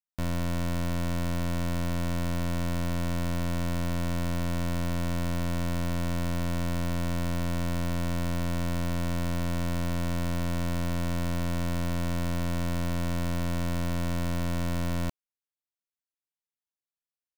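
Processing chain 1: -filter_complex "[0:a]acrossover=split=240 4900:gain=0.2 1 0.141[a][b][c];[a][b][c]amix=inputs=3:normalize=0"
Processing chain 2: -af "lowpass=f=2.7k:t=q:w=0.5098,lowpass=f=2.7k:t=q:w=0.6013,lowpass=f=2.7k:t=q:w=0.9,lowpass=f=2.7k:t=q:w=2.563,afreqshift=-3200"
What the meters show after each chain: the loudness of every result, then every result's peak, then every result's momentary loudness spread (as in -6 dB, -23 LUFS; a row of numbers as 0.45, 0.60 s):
-36.5, -25.0 LUFS; -23.5, -20.0 dBFS; 0, 0 LU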